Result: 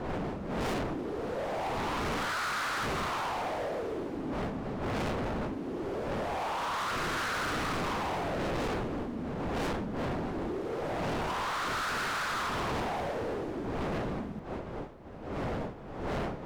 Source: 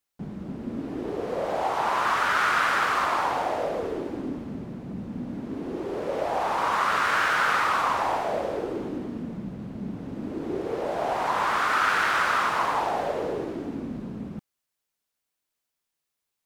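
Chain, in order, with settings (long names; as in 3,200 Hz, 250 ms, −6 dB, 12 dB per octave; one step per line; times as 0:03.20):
wind on the microphone 550 Hz −24 dBFS
hard clipping −27.5 dBFS, distortion −2 dB
level −3.5 dB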